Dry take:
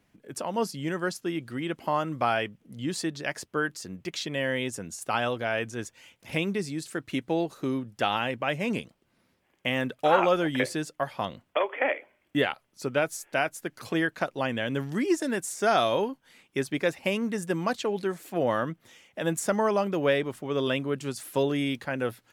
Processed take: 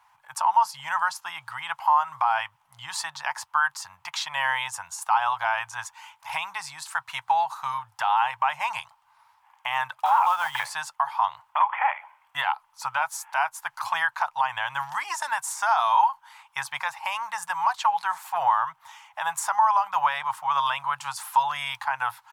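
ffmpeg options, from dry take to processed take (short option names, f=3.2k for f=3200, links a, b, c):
-filter_complex "[0:a]asettb=1/sr,asplit=3[a][b][c];[a]atrim=end=10.054[d];[b]atrim=start=10.05:end=10.7,asetpts=PTS-STARTPTS,afade=t=in:d=0.004:c=qsin,afade=t=out:st=0.646:d=0.004:c=qsin,acrusher=bits=5:mode=log:mix=0:aa=0.000001[e];[c]atrim=start=10.696[f];[d][e]acrossfade=d=0.004:c1=hsin:c2=qsin[g];[g][f]acrossfade=d=0.004:c1=qsin:c2=hsin,firequalizer=gain_entry='entry(130,0);entry(220,-28);entry(850,14);entry(1200,7);entry(1900,1)':delay=0.05:min_phase=1,alimiter=limit=-19dB:level=0:latency=1:release=166,lowshelf=f=630:t=q:w=3:g=-14,volume=2.5dB"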